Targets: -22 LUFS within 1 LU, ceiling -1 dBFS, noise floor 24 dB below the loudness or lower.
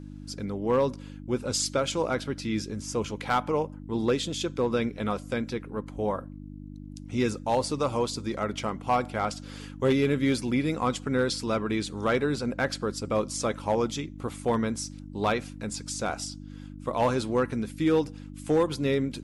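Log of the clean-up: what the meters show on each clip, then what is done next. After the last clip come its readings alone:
clipped samples 0.3%; clipping level -16.5 dBFS; hum 50 Hz; highest harmonic 300 Hz; hum level -40 dBFS; loudness -28.5 LUFS; peak level -16.5 dBFS; loudness target -22.0 LUFS
-> clip repair -16.5 dBFS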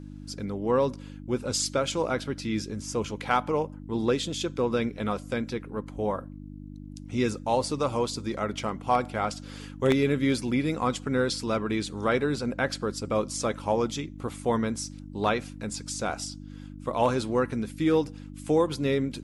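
clipped samples 0.0%; hum 50 Hz; highest harmonic 300 Hz; hum level -40 dBFS
-> de-hum 50 Hz, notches 6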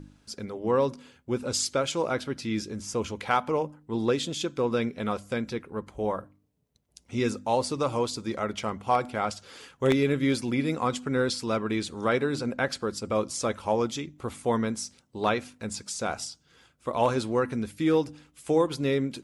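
hum not found; loudness -28.5 LUFS; peak level -8.0 dBFS; loudness target -22.0 LUFS
-> trim +6.5 dB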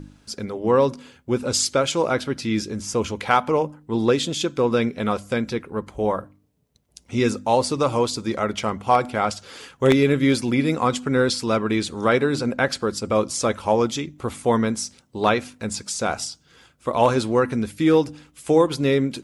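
loudness -22.0 LUFS; peak level -1.5 dBFS; noise floor -60 dBFS

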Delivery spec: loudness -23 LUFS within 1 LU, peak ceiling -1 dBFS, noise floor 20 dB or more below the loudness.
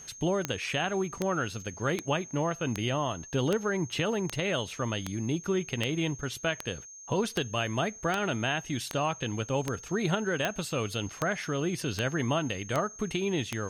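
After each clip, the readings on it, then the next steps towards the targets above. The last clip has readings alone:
clicks found 18; steady tone 6.4 kHz; tone level -45 dBFS; loudness -31.0 LUFS; peak level -9.5 dBFS; loudness target -23.0 LUFS
-> de-click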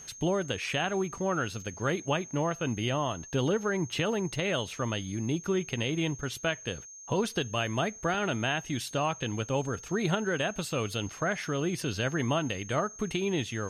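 clicks found 0; steady tone 6.4 kHz; tone level -45 dBFS
-> band-stop 6.4 kHz, Q 30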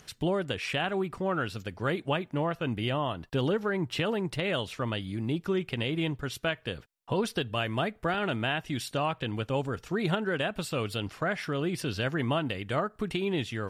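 steady tone not found; loudness -31.0 LUFS; peak level -14.5 dBFS; loudness target -23.0 LUFS
-> trim +8 dB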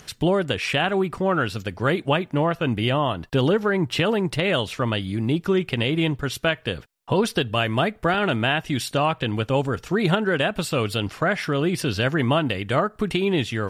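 loudness -23.0 LUFS; peak level -6.5 dBFS; noise floor -50 dBFS

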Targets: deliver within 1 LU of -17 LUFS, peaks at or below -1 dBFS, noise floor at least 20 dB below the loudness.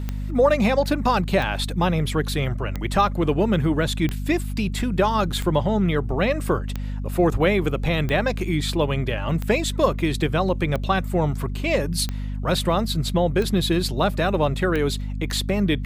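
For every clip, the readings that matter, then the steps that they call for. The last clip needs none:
clicks found 12; hum 50 Hz; highest harmonic 250 Hz; hum level -25 dBFS; loudness -22.5 LUFS; peak level -6.0 dBFS; loudness target -17.0 LUFS
-> de-click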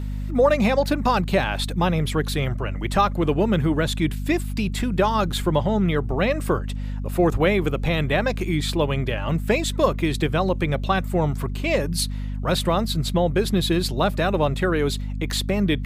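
clicks found 0; hum 50 Hz; highest harmonic 250 Hz; hum level -25 dBFS
-> hum notches 50/100/150/200/250 Hz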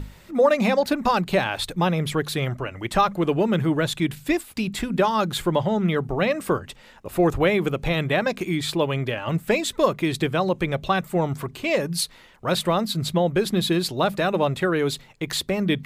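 hum not found; loudness -23.5 LUFS; peak level -6.5 dBFS; loudness target -17.0 LUFS
-> trim +6.5 dB; peak limiter -1 dBFS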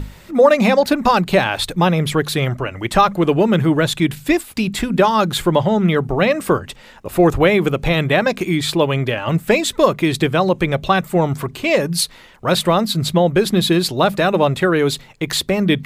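loudness -17.0 LUFS; peak level -1.0 dBFS; noise floor -43 dBFS

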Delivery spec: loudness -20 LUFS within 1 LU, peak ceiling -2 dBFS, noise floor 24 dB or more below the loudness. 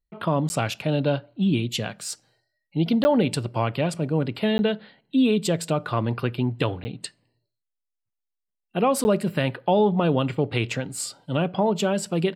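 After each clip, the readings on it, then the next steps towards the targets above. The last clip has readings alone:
dropouts 5; longest dropout 10 ms; loudness -24.5 LUFS; peak level -7.5 dBFS; loudness target -20.0 LUFS
-> interpolate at 0.49/3.04/4.58/6.84/9.04 s, 10 ms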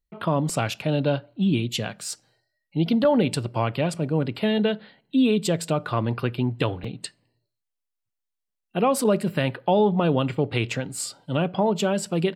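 dropouts 0; loudness -24.5 LUFS; peak level -7.5 dBFS; loudness target -20.0 LUFS
-> trim +4.5 dB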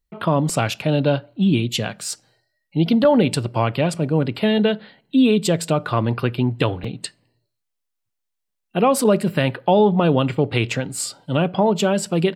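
loudness -20.0 LUFS; peak level -3.0 dBFS; noise floor -78 dBFS

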